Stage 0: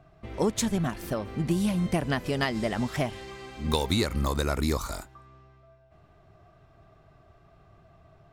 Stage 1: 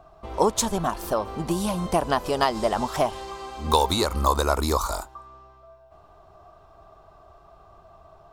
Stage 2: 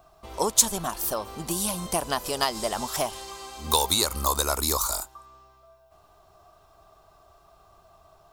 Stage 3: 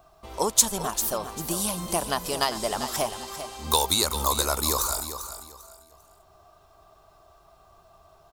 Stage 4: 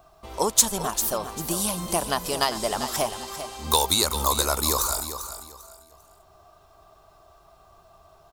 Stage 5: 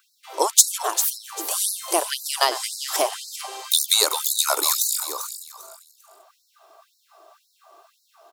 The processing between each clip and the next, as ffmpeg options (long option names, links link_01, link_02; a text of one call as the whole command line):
ffmpeg -i in.wav -af "equalizer=frequency=125:width_type=o:width=1:gain=-12,equalizer=frequency=250:width_type=o:width=1:gain=-6,equalizer=frequency=1000:width_type=o:width=1:gain=9,equalizer=frequency=2000:width_type=o:width=1:gain=-11,volume=6.5dB" out.wav
ffmpeg -i in.wav -af "crystalizer=i=4.5:c=0,volume=-6.5dB" out.wav
ffmpeg -i in.wav -af "aecho=1:1:396|792|1188:0.299|0.0776|0.0202" out.wav
ffmpeg -i in.wav -af "asoftclip=type=hard:threshold=-8dB,volume=1.5dB" out.wav
ffmpeg -i in.wav -af "afftfilt=real='re*gte(b*sr/1024,280*pow(3900/280,0.5+0.5*sin(2*PI*1.9*pts/sr)))':imag='im*gte(b*sr/1024,280*pow(3900/280,0.5+0.5*sin(2*PI*1.9*pts/sr)))':win_size=1024:overlap=0.75,volume=4dB" out.wav